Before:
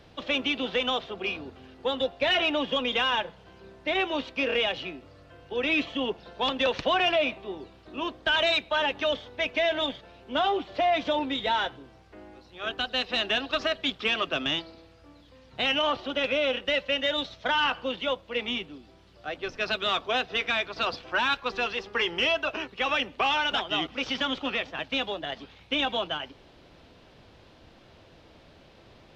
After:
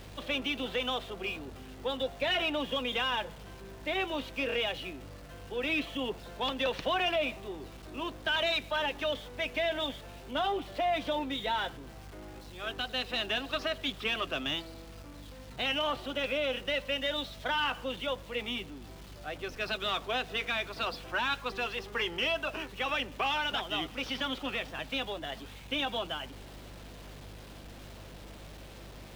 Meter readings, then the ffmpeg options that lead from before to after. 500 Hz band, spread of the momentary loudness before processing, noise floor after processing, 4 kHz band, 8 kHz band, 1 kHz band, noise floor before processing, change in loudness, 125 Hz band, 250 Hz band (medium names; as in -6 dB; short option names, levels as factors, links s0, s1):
-5.5 dB, 10 LU, -48 dBFS, -5.5 dB, no reading, -5.5 dB, -55 dBFS, -5.5 dB, +2.0 dB, -5.0 dB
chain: -af "aeval=exprs='val(0)+0.5*0.00891*sgn(val(0))':c=same,aeval=exprs='val(0)+0.00708*(sin(2*PI*50*n/s)+sin(2*PI*2*50*n/s)/2+sin(2*PI*3*50*n/s)/3+sin(2*PI*4*50*n/s)/4+sin(2*PI*5*50*n/s)/5)':c=same,volume=0.501"